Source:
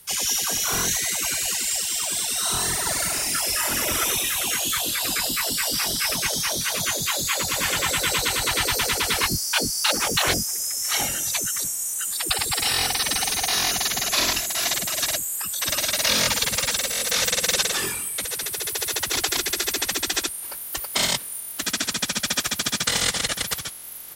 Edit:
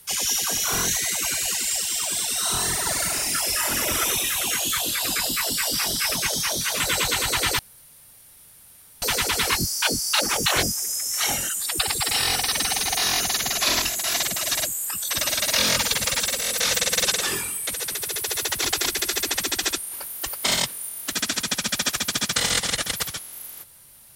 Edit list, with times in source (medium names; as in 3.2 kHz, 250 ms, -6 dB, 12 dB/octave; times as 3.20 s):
6.80–7.94 s: delete
8.73 s: insert room tone 1.43 s
11.20–12.00 s: delete